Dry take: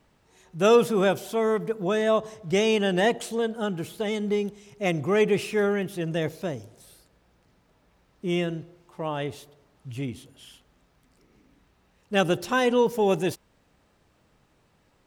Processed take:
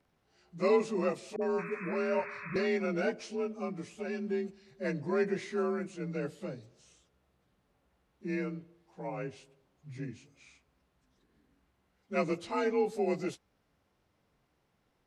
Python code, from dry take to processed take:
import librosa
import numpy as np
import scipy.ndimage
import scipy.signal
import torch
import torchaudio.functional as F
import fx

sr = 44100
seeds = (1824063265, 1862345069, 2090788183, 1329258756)

y = fx.partial_stretch(x, sr, pct=89)
y = fx.dispersion(y, sr, late='highs', ms=55.0, hz=440.0, at=(1.36, 2.56))
y = fx.spec_paint(y, sr, seeds[0], shape='noise', start_s=1.58, length_s=1.09, low_hz=960.0, high_hz=2600.0, level_db=-37.0)
y = y * 10.0 ** (-7.5 / 20.0)